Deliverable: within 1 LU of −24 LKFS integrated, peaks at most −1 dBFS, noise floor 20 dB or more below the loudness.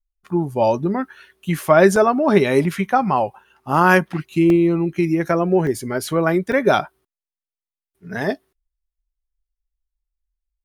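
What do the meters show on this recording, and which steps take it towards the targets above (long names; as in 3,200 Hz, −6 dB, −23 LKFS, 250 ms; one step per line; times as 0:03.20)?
number of dropouts 4; longest dropout 1.7 ms; integrated loudness −18.5 LKFS; sample peak −1.0 dBFS; target loudness −24.0 LKFS
→ repair the gap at 0:01.96/0:04.50/0:05.67/0:06.52, 1.7 ms
level −5.5 dB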